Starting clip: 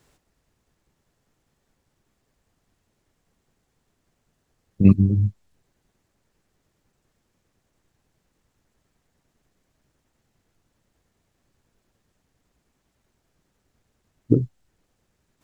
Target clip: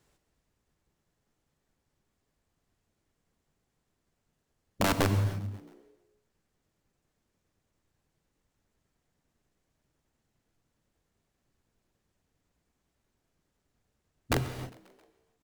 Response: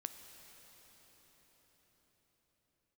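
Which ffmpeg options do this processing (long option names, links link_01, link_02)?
-filter_complex "[0:a]aeval=exprs='(mod(3.55*val(0)+1,2)-1)/3.55':channel_layout=same,asplit=6[link_01][link_02][link_03][link_04][link_05][link_06];[link_02]adelay=134,afreqshift=64,volume=-22.5dB[link_07];[link_03]adelay=268,afreqshift=128,volume=-26.4dB[link_08];[link_04]adelay=402,afreqshift=192,volume=-30.3dB[link_09];[link_05]adelay=536,afreqshift=256,volume=-34.1dB[link_10];[link_06]adelay=670,afreqshift=320,volume=-38dB[link_11];[link_01][link_07][link_08][link_09][link_10][link_11]amix=inputs=6:normalize=0[link_12];[1:a]atrim=start_sample=2205,afade=type=out:start_time=0.44:duration=0.01,atrim=end_sample=19845,asetrate=52920,aresample=44100[link_13];[link_12][link_13]afir=irnorm=-1:irlink=0,volume=-2.5dB"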